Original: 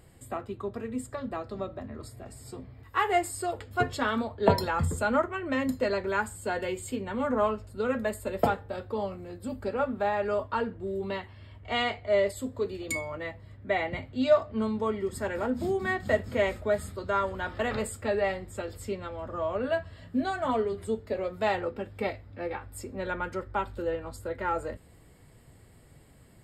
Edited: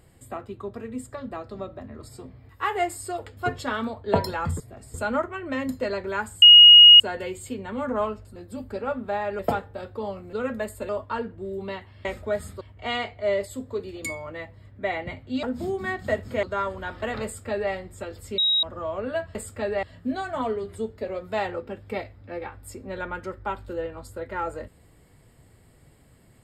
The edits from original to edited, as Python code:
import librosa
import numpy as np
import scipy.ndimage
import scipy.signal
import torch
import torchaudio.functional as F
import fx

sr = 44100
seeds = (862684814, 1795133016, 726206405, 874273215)

y = fx.edit(x, sr, fx.move(start_s=2.09, length_s=0.34, to_s=4.94),
    fx.insert_tone(at_s=6.42, length_s=0.58, hz=2880.0, db=-6.0),
    fx.swap(start_s=7.78, length_s=0.56, other_s=9.28, other_length_s=1.03),
    fx.cut(start_s=14.29, length_s=1.15),
    fx.move(start_s=16.44, length_s=0.56, to_s=11.47),
    fx.duplicate(start_s=17.81, length_s=0.48, to_s=19.92),
    fx.bleep(start_s=18.95, length_s=0.25, hz=3810.0, db=-18.0), tone=tone)